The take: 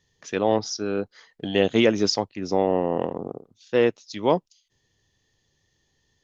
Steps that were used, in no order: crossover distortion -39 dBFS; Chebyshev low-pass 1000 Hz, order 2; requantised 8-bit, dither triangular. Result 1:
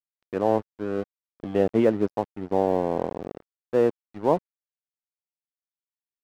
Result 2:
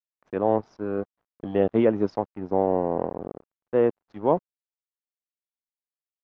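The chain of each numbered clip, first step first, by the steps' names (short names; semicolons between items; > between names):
requantised > Chebyshev low-pass > crossover distortion; requantised > crossover distortion > Chebyshev low-pass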